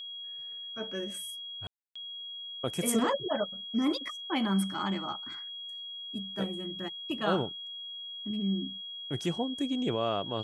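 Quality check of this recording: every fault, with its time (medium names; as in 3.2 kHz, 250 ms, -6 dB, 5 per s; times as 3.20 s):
whine 3.3 kHz -39 dBFS
1.67–1.96 s: dropout 285 ms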